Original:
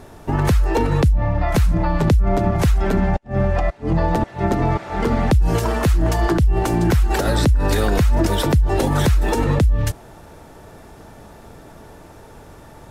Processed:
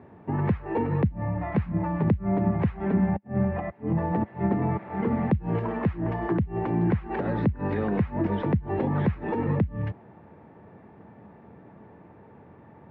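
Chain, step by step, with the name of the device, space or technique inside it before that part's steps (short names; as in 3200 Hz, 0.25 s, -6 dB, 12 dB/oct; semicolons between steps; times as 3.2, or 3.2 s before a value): bass cabinet (speaker cabinet 88–2100 Hz, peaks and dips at 200 Hz +7 dB, 640 Hz -4 dB, 1400 Hz -8 dB); gain -7 dB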